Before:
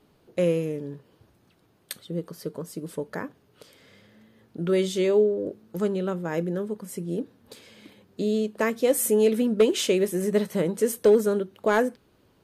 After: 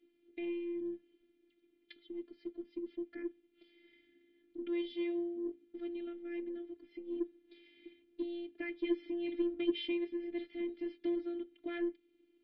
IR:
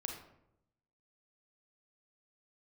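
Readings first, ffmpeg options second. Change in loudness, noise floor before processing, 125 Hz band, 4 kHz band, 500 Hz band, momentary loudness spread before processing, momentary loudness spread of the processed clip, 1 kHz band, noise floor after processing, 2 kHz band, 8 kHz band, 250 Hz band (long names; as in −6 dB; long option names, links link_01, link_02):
−14.5 dB, −63 dBFS, below −35 dB, −13.0 dB, −18.0 dB, 15 LU, 12 LU, below −20 dB, −73 dBFS, −14.5 dB, below −40 dB, −9.5 dB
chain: -filter_complex "[0:a]asplit=3[link_01][link_02][link_03];[link_01]bandpass=frequency=270:width_type=q:width=8,volume=0dB[link_04];[link_02]bandpass=frequency=2290:width_type=q:width=8,volume=-6dB[link_05];[link_03]bandpass=frequency=3010:width_type=q:width=8,volume=-9dB[link_06];[link_04][link_05][link_06]amix=inputs=3:normalize=0,afftfilt=real='hypot(re,im)*cos(PI*b)':imag='0':win_size=512:overlap=0.75,aemphasis=mode=reproduction:type=cd,asplit=2[link_07][link_08];[link_08]asoftclip=type=tanh:threshold=-38.5dB,volume=-8.5dB[link_09];[link_07][link_09]amix=inputs=2:normalize=0,aresample=11025,aresample=44100,volume=2dB"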